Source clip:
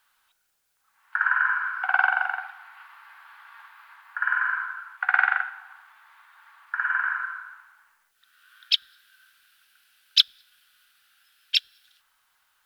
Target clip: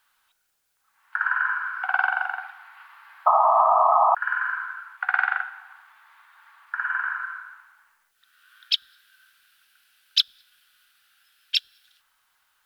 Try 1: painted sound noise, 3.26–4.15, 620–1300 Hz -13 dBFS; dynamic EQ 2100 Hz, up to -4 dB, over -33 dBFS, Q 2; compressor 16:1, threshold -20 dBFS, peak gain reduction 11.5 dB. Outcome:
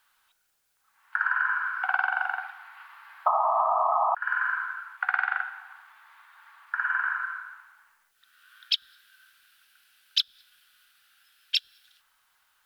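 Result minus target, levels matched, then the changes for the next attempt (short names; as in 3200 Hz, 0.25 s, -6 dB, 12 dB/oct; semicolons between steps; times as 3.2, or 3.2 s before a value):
compressor: peak gain reduction +6 dB
change: compressor 16:1, threshold -13.5 dBFS, peak gain reduction 5 dB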